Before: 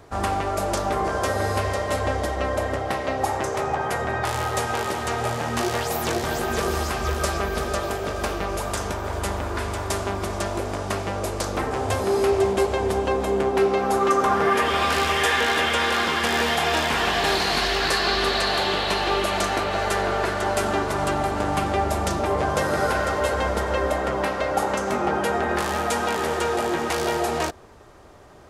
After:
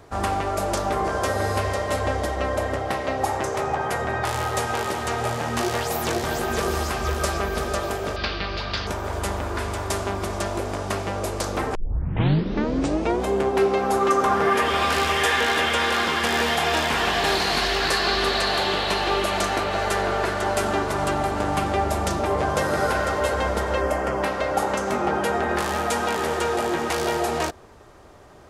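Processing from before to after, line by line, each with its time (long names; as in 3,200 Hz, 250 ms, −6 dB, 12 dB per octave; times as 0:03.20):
0:08.16–0:08.87: drawn EQ curve 150 Hz 0 dB, 410 Hz −5 dB, 890 Hz −5 dB, 1,600 Hz +2 dB, 4,600 Hz +10 dB, 8,200 Hz −29 dB
0:11.75: tape start 1.53 s
0:23.81–0:24.23: parametric band 3,800 Hz −13.5 dB 0.24 octaves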